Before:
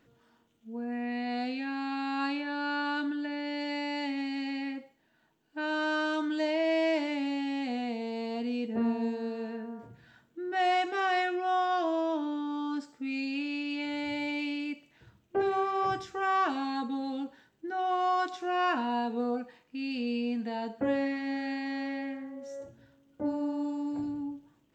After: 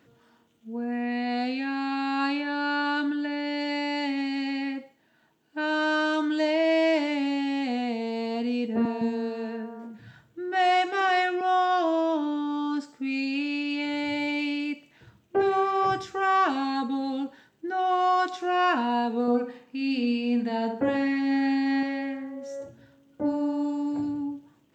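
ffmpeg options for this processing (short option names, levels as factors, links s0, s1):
-filter_complex "[0:a]asettb=1/sr,asplit=3[s0][s1][s2];[s0]atrim=end=8.854[s3];[s1]atrim=start=8.85:end=11.41,asetpts=PTS-STARTPTS,afade=t=in:d=0.004:c=qsin,afade=t=out:st=2.556:d=0.004:c=qsin,acrossover=split=250[s4][s5];[s4]adelay=160[s6];[s6][s5]amix=inputs=2:normalize=0,atrim=end_sample=112896[s7];[s2]atrim=start=11.406[s8];[s3][s7]acrossfade=d=0.004:c1=hsin:c2=qsin[s9];[s9][s8]acrossfade=d=0.004:c1=qsin:c2=hsin,asettb=1/sr,asplit=3[s10][s11][s12];[s10]atrim=end=19.214[s13];[s11]atrim=start=19.21:end=21.83,asetpts=PTS-STARTPTS,afade=t=in:d=0.004:c=qsin,afade=t=out:st=2.616:d=0.004:c=qsin,asplit=2[s14][s15];[s15]adelay=66,lowpass=f=1400:p=1,volume=0.562,asplit=2[s16][s17];[s17]adelay=66,lowpass=f=1400:p=1,volume=0.44,asplit=2[s18][s19];[s19]adelay=66,lowpass=f=1400:p=1,volume=0.44,asplit=2[s20][s21];[s21]adelay=66,lowpass=f=1400:p=1,volume=0.44,asplit=2[s22][s23];[s23]adelay=66,lowpass=f=1400:p=1,volume=0.44[s24];[s14][s16][s18][s20][s22][s24]amix=inputs=6:normalize=0,atrim=end_sample=115542[s25];[s12]atrim=start=21.826[s26];[s13][s25]acrossfade=d=0.004:c1=hsin:c2=qsin[s27];[s27][s26]acrossfade=d=0.004:c1=qsin:c2=hsin,highpass=75,volume=1.78"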